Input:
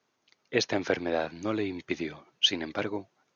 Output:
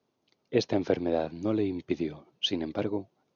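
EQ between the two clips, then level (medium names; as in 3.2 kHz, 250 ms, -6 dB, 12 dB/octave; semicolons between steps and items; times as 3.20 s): distance through air 170 m; peaking EQ 1.7 kHz -13.5 dB 1.8 oct; +4.5 dB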